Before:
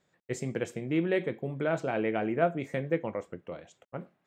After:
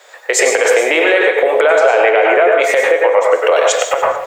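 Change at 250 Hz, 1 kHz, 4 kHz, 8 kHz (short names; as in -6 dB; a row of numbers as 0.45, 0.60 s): +5.5 dB, +22.0 dB, +27.0 dB, n/a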